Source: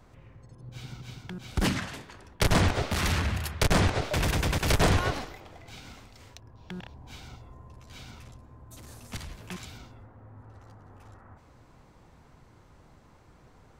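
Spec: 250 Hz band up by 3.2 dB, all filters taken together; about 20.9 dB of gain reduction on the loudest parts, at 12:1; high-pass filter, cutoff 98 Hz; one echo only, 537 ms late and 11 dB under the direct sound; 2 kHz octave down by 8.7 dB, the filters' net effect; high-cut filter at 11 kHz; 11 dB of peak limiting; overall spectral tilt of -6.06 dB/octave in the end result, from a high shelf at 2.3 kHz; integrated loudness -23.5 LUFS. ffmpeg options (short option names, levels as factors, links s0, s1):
-af "highpass=98,lowpass=11000,equalizer=f=250:t=o:g=5,equalizer=f=2000:t=o:g=-8.5,highshelf=f=2300:g=-6,acompressor=threshold=0.01:ratio=12,alimiter=level_in=4.73:limit=0.0631:level=0:latency=1,volume=0.211,aecho=1:1:537:0.282,volume=20"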